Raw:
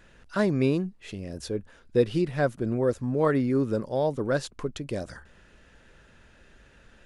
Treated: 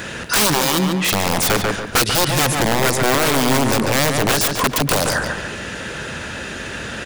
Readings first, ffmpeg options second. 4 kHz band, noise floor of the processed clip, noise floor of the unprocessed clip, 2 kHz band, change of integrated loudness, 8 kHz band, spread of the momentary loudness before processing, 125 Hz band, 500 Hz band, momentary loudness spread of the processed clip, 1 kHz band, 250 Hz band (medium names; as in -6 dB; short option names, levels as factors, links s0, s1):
+24.5 dB, -30 dBFS, -57 dBFS, +18.5 dB, +10.0 dB, +28.5 dB, 11 LU, +8.0 dB, +5.5 dB, 12 LU, +16.5 dB, +6.5 dB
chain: -filter_complex "[0:a]highpass=100,highshelf=f=3000:g=5.5,acrossover=split=3900[s0][s1];[s0]acompressor=threshold=0.0158:ratio=8[s2];[s2][s1]amix=inputs=2:normalize=0,aeval=exprs='(mod(50.1*val(0)+1,2)-1)/50.1':c=same,asplit=2[s3][s4];[s4]adelay=142,lowpass=f=2900:p=1,volume=0.501,asplit=2[s5][s6];[s6]adelay=142,lowpass=f=2900:p=1,volume=0.4,asplit=2[s7][s8];[s8]adelay=142,lowpass=f=2900:p=1,volume=0.4,asplit=2[s9][s10];[s10]adelay=142,lowpass=f=2900:p=1,volume=0.4,asplit=2[s11][s12];[s12]adelay=142,lowpass=f=2900:p=1,volume=0.4[s13];[s5][s7][s9][s11][s13]amix=inputs=5:normalize=0[s14];[s3][s14]amix=inputs=2:normalize=0,alimiter=level_in=63.1:limit=0.891:release=50:level=0:latency=1,volume=0.376"